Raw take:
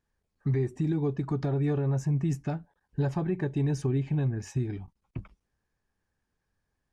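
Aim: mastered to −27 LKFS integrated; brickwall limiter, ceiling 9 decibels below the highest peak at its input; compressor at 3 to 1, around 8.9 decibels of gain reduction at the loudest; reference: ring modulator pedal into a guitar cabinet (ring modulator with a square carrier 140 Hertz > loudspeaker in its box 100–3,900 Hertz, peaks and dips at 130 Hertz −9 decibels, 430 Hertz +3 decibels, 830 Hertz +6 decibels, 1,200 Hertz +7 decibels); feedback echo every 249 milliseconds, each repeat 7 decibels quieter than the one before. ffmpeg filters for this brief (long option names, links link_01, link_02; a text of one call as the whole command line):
ffmpeg -i in.wav -af "acompressor=threshold=-36dB:ratio=3,alimiter=level_in=11dB:limit=-24dB:level=0:latency=1,volume=-11dB,aecho=1:1:249|498|747|996|1245:0.447|0.201|0.0905|0.0407|0.0183,aeval=exprs='val(0)*sgn(sin(2*PI*140*n/s))':channel_layout=same,highpass=100,equalizer=frequency=130:width_type=q:width=4:gain=-9,equalizer=frequency=430:width_type=q:width=4:gain=3,equalizer=frequency=830:width_type=q:width=4:gain=6,equalizer=frequency=1200:width_type=q:width=4:gain=7,lowpass=frequency=3900:width=0.5412,lowpass=frequency=3900:width=1.3066,volume=15.5dB" out.wav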